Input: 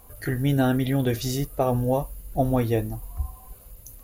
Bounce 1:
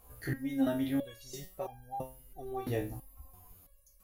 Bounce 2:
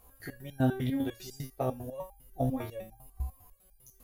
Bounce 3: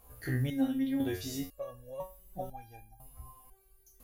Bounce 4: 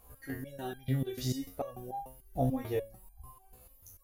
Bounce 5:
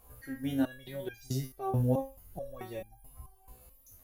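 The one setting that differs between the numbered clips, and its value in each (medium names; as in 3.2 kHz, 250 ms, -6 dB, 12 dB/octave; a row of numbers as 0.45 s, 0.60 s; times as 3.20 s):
resonator arpeggio, rate: 3 Hz, 10 Hz, 2 Hz, 6.8 Hz, 4.6 Hz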